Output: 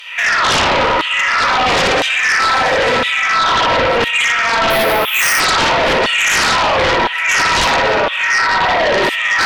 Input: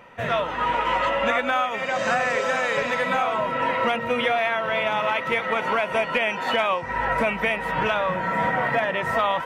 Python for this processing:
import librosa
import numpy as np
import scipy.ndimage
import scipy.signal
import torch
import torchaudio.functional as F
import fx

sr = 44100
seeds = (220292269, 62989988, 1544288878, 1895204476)

y = fx.over_compress(x, sr, threshold_db=-30.0, ratio=-1.0)
y = fx.rev_spring(y, sr, rt60_s=1.8, pass_ms=(57,), chirp_ms=70, drr_db=-1.5)
y = fx.filter_lfo_highpass(y, sr, shape='saw_down', hz=0.99, low_hz=300.0, high_hz=3500.0, q=3.0)
y = fx.fold_sine(y, sr, drive_db=18, ceiling_db=-3.0)
y = fx.resample_bad(y, sr, factor=3, down='none', up='hold', at=(4.7, 5.4))
y = y * librosa.db_to_amplitude(-7.0)